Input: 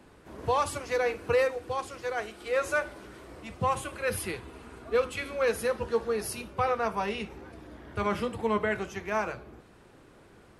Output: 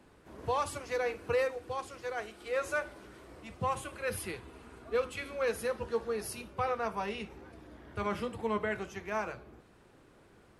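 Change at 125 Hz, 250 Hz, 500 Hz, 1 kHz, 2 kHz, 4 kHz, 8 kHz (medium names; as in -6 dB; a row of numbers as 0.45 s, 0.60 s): -5.0 dB, -5.0 dB, -5.0 dB, -5.0 dB, -5.0 dB, -5.0 dB, -5.0 dB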